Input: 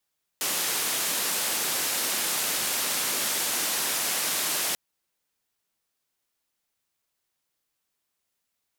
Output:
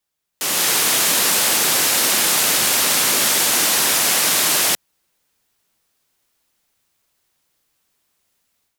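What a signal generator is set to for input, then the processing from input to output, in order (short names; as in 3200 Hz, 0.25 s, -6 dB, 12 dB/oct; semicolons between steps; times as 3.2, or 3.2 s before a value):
noise band 200–14000 Hz, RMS -27.5 dBFS 4.34 s
low shelf 220 Hz +3 dB; AGC gain up to 11 dB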